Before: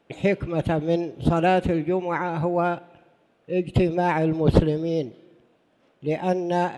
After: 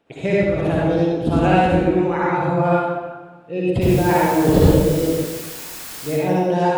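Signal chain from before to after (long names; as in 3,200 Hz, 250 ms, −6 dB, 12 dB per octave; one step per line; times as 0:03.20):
0:03.81–0:06.08: background noise white −38 dBFS
convolution reverb RT60 1.3 s, pre-delay 47 ms, DRR −6.5 dB
level −2 dB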